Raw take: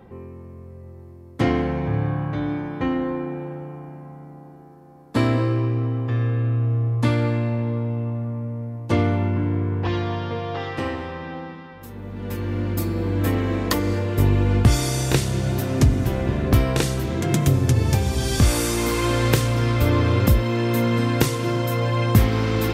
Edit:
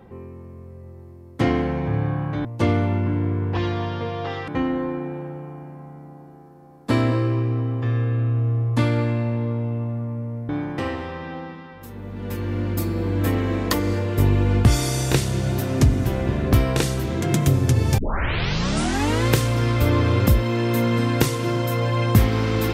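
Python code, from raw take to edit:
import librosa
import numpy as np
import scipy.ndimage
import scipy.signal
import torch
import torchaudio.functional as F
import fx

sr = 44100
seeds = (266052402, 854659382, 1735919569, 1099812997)

y = fx.edit(x, sr, fx.swap(start_s=2.45, length_s=0.29, other_s=8.75, other_length_s=2.03),
    fx.tape_start(start_s=17.98, length_s=1.28), tone=tone)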